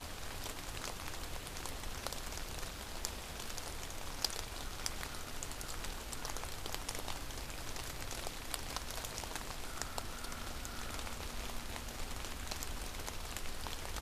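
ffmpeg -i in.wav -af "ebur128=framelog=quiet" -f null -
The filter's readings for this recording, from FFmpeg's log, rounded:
Integrated loudness:
  I:         -42.9 LUFS
  Threshold: -52.9 LUFS
Loudness range:
  LRA:         1.6 LU
  Threshold: -62.8 LUFS
  LRA low:   -43.5 LUFS
  LRA high:  -42.0 LUFS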